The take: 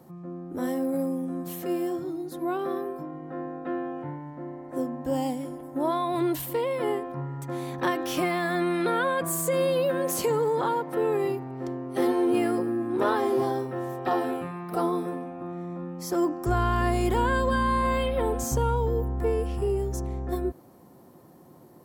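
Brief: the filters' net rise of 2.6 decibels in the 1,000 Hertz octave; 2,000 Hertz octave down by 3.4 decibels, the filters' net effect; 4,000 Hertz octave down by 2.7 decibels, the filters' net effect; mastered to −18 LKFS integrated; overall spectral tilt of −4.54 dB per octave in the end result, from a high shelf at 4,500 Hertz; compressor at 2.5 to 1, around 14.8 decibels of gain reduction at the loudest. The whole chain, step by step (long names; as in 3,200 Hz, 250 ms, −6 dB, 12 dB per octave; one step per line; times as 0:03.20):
parametric band 1,000 Hz +4.5 dB
parametric band 2,000 Hz −7 dB
parametric band 4,000 Hz −5.5 dB
high-shelf EQ 4,500 Hz +8 dB
downward compressor 2.5 to 1, threshold −43 dBFS
level +22 dB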